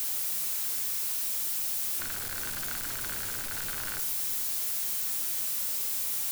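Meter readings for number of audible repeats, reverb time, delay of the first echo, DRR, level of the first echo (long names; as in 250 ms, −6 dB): no echo audible, 0.75 s, no echo audible, 7.5 dB, no echo audible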